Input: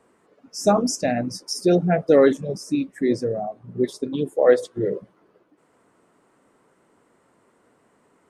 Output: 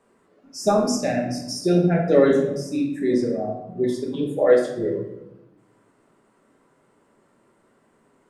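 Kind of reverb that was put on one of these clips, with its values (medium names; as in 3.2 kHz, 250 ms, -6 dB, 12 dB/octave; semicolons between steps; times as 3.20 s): simulated room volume 250 m³, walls mixed, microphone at 1.2 m; trim -4 dB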